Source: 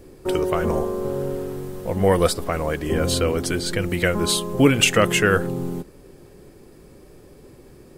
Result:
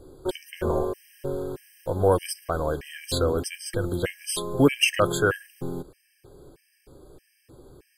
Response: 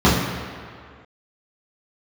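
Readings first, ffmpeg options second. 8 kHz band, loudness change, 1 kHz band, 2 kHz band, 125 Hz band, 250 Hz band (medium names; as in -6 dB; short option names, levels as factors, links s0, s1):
-6.5 dB, -5.0 dB, -4.0 dB, -6.0 dB, -5.5 dB, -6.0 dB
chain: -af "equalizer=f=200:t=o:w=0.33:g=-12,equalizer=f=2000:t=o:w=0.33:g=-6,equalizer=f=6300:t=o:w=0.33:g=-5,afftfilt=real='re*gt(sin(2*PI*1.6*pts/sr)*(1-2*mod(floor(b*sr/1024/1600),2)),0)':imag='im*gt(sin(2*PI*1.6*pts/sr)*(1-2*mod(floor(b*sr/1024/1600),2)),0)':win_size=1024:overlap=0.75,volume=0.841"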